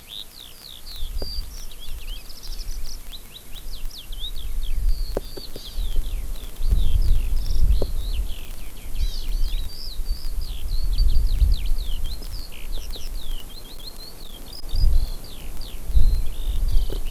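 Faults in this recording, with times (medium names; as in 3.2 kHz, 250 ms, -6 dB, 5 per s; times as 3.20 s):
crackle 10 per s -24 dBFS
8.45 s: pop
13.46–14.64 s: clipped -28.5 dBFS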